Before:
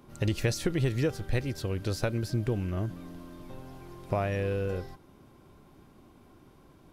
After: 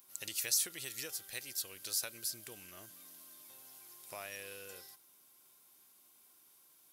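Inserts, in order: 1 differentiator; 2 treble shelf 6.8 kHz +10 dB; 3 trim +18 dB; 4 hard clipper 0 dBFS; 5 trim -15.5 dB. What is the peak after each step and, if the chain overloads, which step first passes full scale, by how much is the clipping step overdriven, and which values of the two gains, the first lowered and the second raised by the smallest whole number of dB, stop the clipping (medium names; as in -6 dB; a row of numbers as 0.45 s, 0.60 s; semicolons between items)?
-25.5 dBFS, -20.0 dBFS, -2.0 dBFS, -2.0 dBFS, -17.5 dBFS; nothing clips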